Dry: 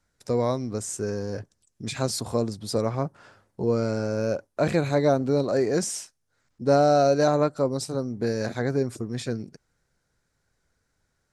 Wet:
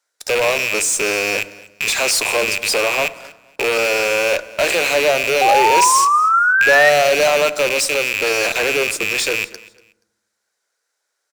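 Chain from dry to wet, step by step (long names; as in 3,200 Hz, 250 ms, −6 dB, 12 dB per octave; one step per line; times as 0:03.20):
loose part that buzzes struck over −40 dBFS, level −16 dBFS
high-pass filter 440 Hz 24 dB per octave
high-shelf EQ 2,400 Hz +7 dB
in parallel at −5 dB: fuzz pedal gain 36 dB, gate −45 dBFS
on the sum: sound drawn into the spectrogram rise, 0:05.41–0:06.90, 760–1,900 Hz −13 dBFS
repeating echo 239 ms, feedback 24%, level −21 dB
on a send at −14 dB: convolution reverb RT60 0.95 s, pre-delay 5 ms
on the sum: level −1 dB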